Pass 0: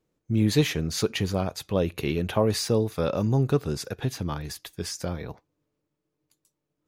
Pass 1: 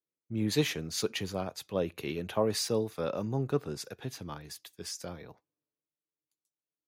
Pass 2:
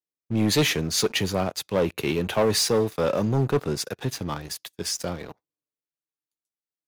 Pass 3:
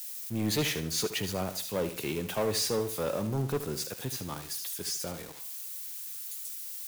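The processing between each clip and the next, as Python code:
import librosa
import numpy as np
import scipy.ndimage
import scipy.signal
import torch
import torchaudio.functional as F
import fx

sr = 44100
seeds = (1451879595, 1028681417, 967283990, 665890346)

y1 = fx.highpass(x, sr, hz=210.0, slope=6)
y1 = fx.band_widen(y1, sr, depth_pct=40)
y1 = y1 * librosa.db_to_amplitude(-5.5)
y2 = fx.leveller(y1, sr, passes=3)
y3 = y2 + 0.5 * 10.0 ** (-24.0 / 20.0) * np.diff(np.sign(y2), prepend=np.sign(y2[:1]))
y3 = fx.echo_feedback(y3, sr, ms=75, feedback_pct=33, wet_db=-11.5)
y3 = y3 * librosa.db_to_amplitude(-8.5)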